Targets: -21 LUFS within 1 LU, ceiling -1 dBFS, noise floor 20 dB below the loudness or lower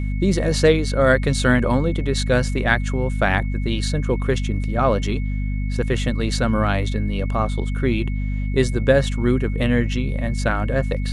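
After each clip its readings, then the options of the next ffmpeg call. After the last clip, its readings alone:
hum 50 Hz; highest harmonic 250 Hz; hum level -20 dBFS; steady tone 2.2 kHz; tone level -40 dBFS; loudness -21.0 LUFS; peak level -3.0 dBFS; loudness target -21.0 LUFS
-> -af "bandreject=f=50:t=h:w=4,bandreject=f=100:t=h:w=4,bandreject=f=150:t=h:w=4,bandreject=f=200:t=h:w=4,bandreject=f=250:t=h:w=4"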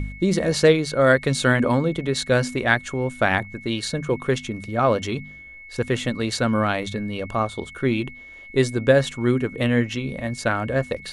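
hum not found; steady tone 2.2 kHz; tone level -40 dBFS
-> -af "bandreject=f=2200:w=30"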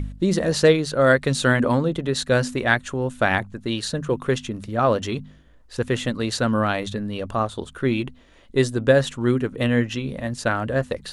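steady tone not found; loudness -22.5 LUFS; peak level -3.0 dBFS; loudness target -21.0 LUFS
-> -af "volume=1.19"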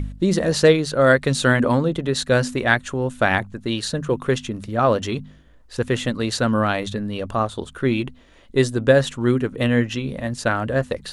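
loudness -21.0 LUFS; peak level -1.5 dBFS; noise floor -49 dBFS

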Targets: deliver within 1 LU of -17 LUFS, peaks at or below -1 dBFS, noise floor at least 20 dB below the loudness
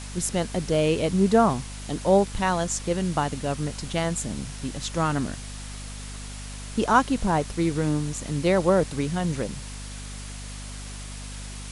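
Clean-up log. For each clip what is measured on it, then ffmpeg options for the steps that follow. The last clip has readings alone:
hum 50 Hz; highest harmonic 250 Hz; hum level -35 dBFS; noise floor -37 dBFS; noise floor target -45 dBFS; loudness -25.0 LUFS; peak level -6.0 dBFS; loudness target -17.0 LUFS
-> -af "bandreject=f=50:t=h:w=4,bandreject=f=100:t=h:w=4,bandreject=f=150:t=h:w=4,bandreject=f=200:t=h:w=4,bandreject=f=250:t=h:w=4"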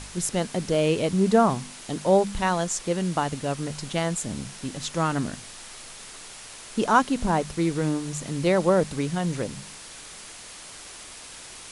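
hum not found; noise floor -43 dBFS; noise floor target -45 dBFS
-> -af "afftdn=nr=6:nf=-43"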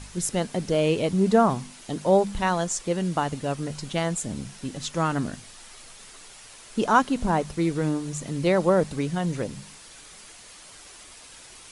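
noise floor -47 dBFS; loudness -25.5 LUFS; peak level -6.5 dBFS; loudness target -17.0 LUFS
-> -af "volume=2.66,alimiter=limit=0.891:level=0:latency=1"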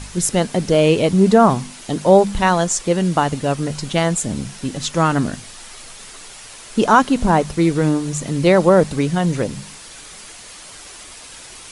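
loudness -17.0 LUFS; peak level -1.0 dBFS; noise floor -39 dBFS

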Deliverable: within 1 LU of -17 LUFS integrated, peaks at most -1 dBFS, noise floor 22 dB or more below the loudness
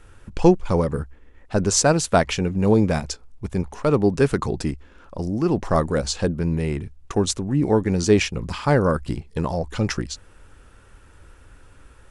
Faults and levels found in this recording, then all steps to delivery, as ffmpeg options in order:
loudness -22.0 LUFS; peak level -3.5 dBFS; loudness target -17.0 LUFS
-> -af "volume=1.78,alimiter=limit=0.891:level=0:latency=1"

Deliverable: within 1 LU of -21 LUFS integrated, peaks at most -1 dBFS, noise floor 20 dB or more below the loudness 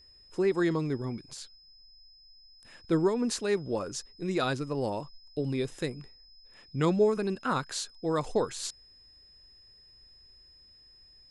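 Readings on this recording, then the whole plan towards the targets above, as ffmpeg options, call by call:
steady tone 5.1 kHz; tone level -55 dBFS; loudness -30.5 LUFS; peak level -15.0 dBFS; loudness target -21.0 LUFS
-> -af "bandreject=f=5100:w=30"
-af "volume=2.99"

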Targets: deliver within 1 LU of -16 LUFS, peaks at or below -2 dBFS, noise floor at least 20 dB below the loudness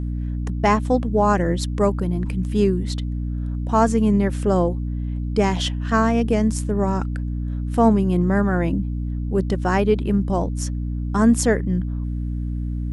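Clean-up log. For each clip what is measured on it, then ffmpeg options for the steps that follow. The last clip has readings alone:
hum 60 Hz; highest harmonic 300 Hz; hum level -23 dBFS; loudness -21.5 LUFS; peak level -4.0 dBFS; loudness target -16.0 LUFS
-> -af "bandreject=f=60:t=h:w=6,bandreject=f=120:t=h:w=6,bandreject=f=180:t=h:w=6,bandreject=f=240:t=h:w=6,bandreject=f=300:t=h:w=6"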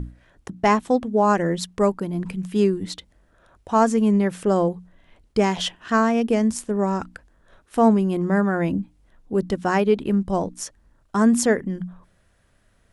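hum not found; loudness -21.5 LUFS; peak level -5.5 dBFS; loudness target -16.0 LUFS
-> -af "volume=1.88,alimiter=limit=0.794:level=0:latency=1"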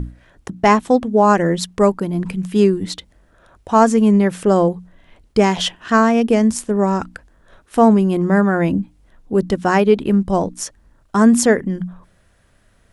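loudness -16.5 LUFS; peak level -2.0 dBFS; noise floor -56 dBFS

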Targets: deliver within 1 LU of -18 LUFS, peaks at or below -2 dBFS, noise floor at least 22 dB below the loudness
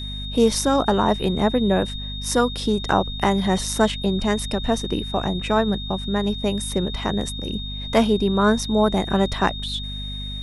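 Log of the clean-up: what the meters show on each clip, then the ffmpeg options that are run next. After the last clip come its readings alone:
hum 50 Hz; highest harmonic 250 Hz; hum level -30 dBFS; steady tone 3.7 kHz; tone level -32 dBFS; loudness -22.0 LUFS; peak level -2.0 dBFS; loudness target -18.0 LUFS
-> -af "bandreject=f=50:t=h:w=4,bandreject=f=100:t=h:w=4,bandreject=f=150:t=h:w=4,bandreject=f=200:t=h:w=4,bandreject=f=250:t=h:w=4"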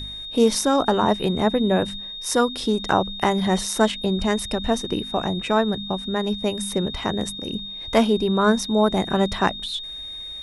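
hum not found; steady tone 3.7 kHz; tone level -32 dBFS
-> -af "bandreject=f=3700:w=30"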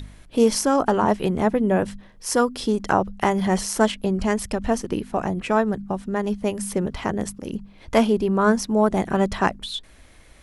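steady tone not found; loudness -22.5 LUFS; peak level -2.0 dBFS; loudness target -18.0 LUFS
-> -af "volume=1.68,alimiter=limit=0.794:level=0:latency=1"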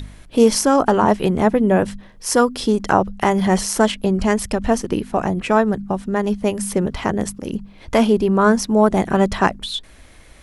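loudness -18.5 LUFS; peak level -2.0 dBFS; noise floor -45 dBFS

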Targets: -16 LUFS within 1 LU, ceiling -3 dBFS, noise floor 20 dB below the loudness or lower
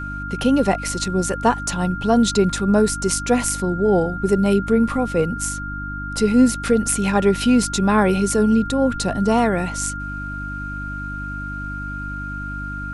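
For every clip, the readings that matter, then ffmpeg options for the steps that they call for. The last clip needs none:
hum 50 Hz; highest harmonic 300 Hz; hum level -29 dBFS; steady tone 1.4 kHz; tone level -29 dBFS; loudness -20.0 LUFS; peak level -3.0 dBFS; loudness target -16.0 LUFS
-> -af "bandreject=f=50:t=h:w=4,bandreject=f=100:t=h:w=4,bandreject=f=150:t=h:w=4,bandreject=f=200:t=h:w=4,bandreject=f=250:t=h:w=4,bandreject=f=300:t=h:w=4"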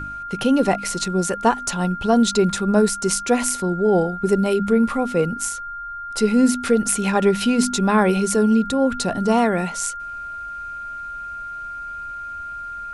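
hum not found; steady tone 1.4 kHz; tone level -29 dBFS
-> -af "bandreject=f=1400:w=30"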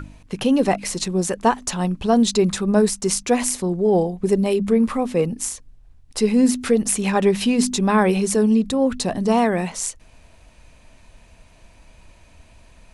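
steady tone not found; loudness -20.0 LUFS; peak level -3.5 dBFS; loudness target -16.0 LUFS
-> -af "volume=1.58,alimiter=limit=0.708:level=0:latency=1"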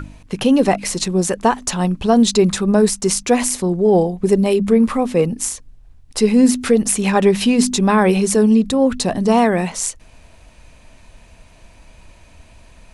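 loudness -16.0 LUFS; peak level -3.0 dBFS; noise floor -47 dBFS

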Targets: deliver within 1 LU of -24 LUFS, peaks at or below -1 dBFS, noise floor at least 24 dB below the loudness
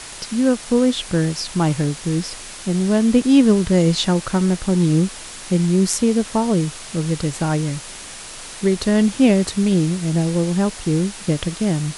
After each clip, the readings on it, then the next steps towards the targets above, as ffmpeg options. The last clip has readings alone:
noise floor -35 dBFS; noise floor target -43 dBFS; loudness -19.0 LUFS; peak level -3.5 dBFS; loudness target -24.0 LUFS
-> -af "afftdn=nr=8:nf=-35"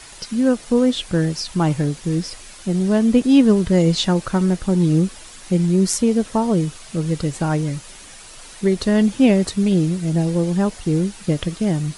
noise floor -41 dBFS; noise floor target -43 dBFS
-> -af "afftdn=nr=6:nf=-41"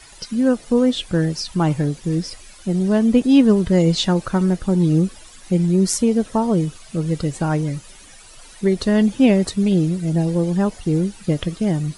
noise floor -44 dBFS; loudness -19.0 LUFS; peak level -3.5 dBFS; loudness target -24.0 LUFS
-> -af "volume=0.562"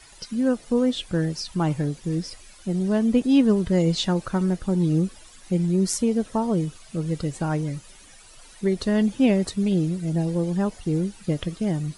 loudness -24.0 LUFS; peak level -8.5 dBFS; noise floor -49 dBFS

